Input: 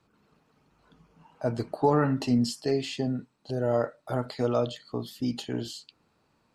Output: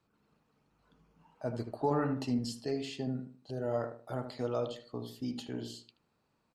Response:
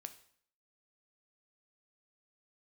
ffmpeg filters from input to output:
-filter_complex "[0:a]asplit=2[s0][s1];[s1]adelay=77,lowpass=f=1200:p=1,volume=0.447,asplit=2[s2][s3];[s3]adelay=77,lowpass=f=1200:p=1,volume=0.34,asplit=2[s4][s5];[s5]adelay=77,lowpass=f=1200:p=1,volume=0.34,asplit=2[s6][s7];[s7]adelay=77,lowpass=f=1200:p=1,volume=0.34[s8];[s0][s2][s4][s6][s8]amix=inputs=5:normalize=0,volume=0.398"

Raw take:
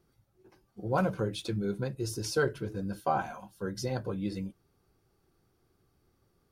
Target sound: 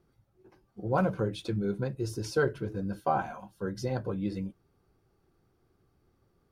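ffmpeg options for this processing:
-af "highshelf=f=3300:g=-8.5,volume=1.19"

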